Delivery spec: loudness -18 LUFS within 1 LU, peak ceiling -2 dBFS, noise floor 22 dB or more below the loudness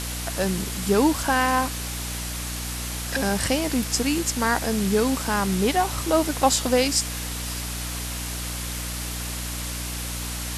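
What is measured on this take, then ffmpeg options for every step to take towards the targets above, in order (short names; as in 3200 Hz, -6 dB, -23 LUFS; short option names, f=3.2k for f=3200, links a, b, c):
hum 60 Hz; harmonics up to 300 Hz; hum level -31 dBFS; noise floor -31 dBFS; noise floor target -47 dBFS; loudness -24.5 LUFS; peak -5.5 dBFS; loudness target -18.0 LUFS
-> -af "bandreject=f=60:t=h:w=6,bandreject=f=120:t=h:w=6,bandreject=f=180:t=h:w=6,bandreject=f=240:t=h:w=6,bandreject=f=300:t=h:w=6"
-af "afftdn=nr=16:nf=-31"
-af "volume=6.5dB,alimiter=limit=-2dB:level=0:latency=1"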